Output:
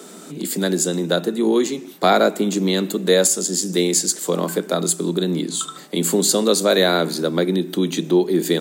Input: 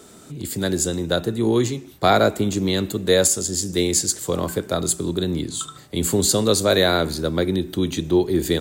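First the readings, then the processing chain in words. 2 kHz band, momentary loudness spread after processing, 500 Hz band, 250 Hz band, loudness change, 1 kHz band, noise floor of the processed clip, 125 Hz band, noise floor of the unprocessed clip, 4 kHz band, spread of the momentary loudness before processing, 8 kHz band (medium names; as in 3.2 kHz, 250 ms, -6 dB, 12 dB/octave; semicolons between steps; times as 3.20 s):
+1.0 dB, 7 LU, +2.0 dB, +2.0 dB, +1.5 dB, +1.0 dB, -40 dBFS, -2.0 dB, -46 dBFS, +1.5 dB, 9 LU, +1.5 dB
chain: elliptic high-pass 170 Hz, stop band 40 dB; in parallel at +2 dB: compression, threshold -30 dBFS, peak gain reduction 17 dB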